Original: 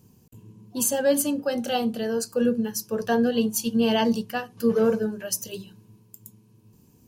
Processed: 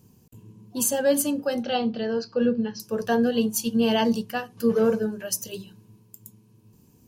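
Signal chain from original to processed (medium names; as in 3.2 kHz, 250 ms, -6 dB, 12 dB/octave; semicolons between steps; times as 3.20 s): 1.63–2.80 s: steep low-pass 5.1 kHz 48 dB/octave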